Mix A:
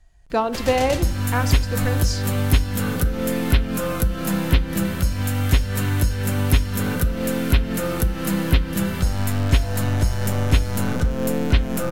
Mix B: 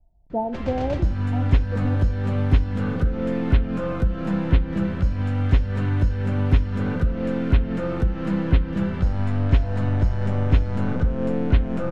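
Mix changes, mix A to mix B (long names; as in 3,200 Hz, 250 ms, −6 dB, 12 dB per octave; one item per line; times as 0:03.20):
speech: add Chebyshev low-pass with heavy ripple 930 Hz, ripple 6 dB
master: add head-to-tape spacing loss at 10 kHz 34 dB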